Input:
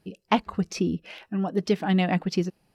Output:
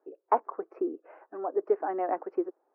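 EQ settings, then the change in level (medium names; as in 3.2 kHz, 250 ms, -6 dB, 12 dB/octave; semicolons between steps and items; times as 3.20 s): steep high-pass 330 Hz 48 dB/octave; inverse Chebyshev low-pass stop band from 3.3 kHz, stop band 50 dB; 0.0 dB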